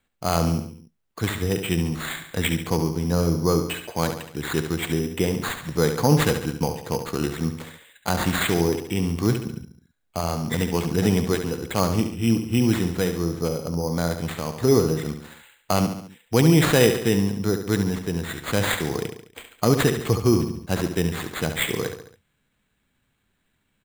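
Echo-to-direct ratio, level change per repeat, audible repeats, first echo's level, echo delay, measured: -7.0 dB, -6.0 dB, 4, -8.5 dB, 70 ms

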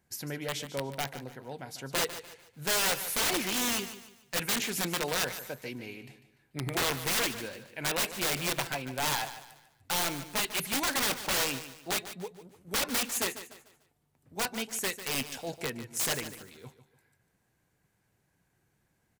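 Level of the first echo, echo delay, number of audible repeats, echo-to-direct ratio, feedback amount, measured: -12.5 dB, 147 ms, 3, -12.0 dB, 35%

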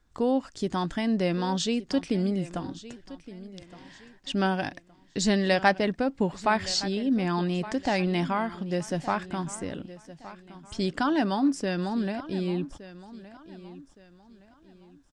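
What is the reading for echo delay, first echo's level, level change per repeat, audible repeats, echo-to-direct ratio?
1167 ms, -16.5 dB, -9.5 dB, 2, -16.0 dB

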